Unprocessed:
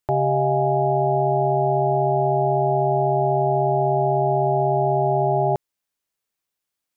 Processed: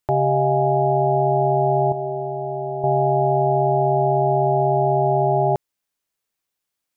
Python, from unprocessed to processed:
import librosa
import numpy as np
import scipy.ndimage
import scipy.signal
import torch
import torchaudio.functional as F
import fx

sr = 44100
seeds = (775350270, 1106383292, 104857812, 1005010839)

y = fx.comb_fb(x, sr, f0_hz=78.0, decay_s=1.7, harmonics='all', damping=0.0, mix_pct=70, at=(1.92, 2.84))
y = F.gain(torch.from_numpy(y), 1.5).numpy()